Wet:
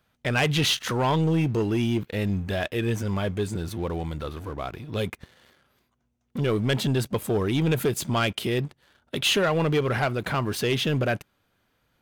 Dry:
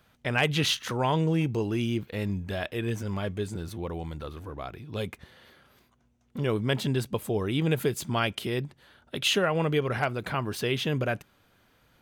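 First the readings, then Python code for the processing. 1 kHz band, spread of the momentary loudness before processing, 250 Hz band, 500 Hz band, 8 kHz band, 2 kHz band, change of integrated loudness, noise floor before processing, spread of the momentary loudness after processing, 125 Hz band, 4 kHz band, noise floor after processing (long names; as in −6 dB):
+2.5 dB, 13 LU, +3.5 dB, +3.0 dB, +4.0 dB, +2.5 dB, +3.0 dB, −65 dBFS, 11 LU, +3.5 dB, +3.0 dB, −72 dBFS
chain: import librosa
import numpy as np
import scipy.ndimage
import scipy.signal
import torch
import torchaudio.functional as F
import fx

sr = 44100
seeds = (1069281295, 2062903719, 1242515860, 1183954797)

y = fx.leveller(x, sr, passes=2)
y = y * 10.0 ** (-2.5 / 20.0)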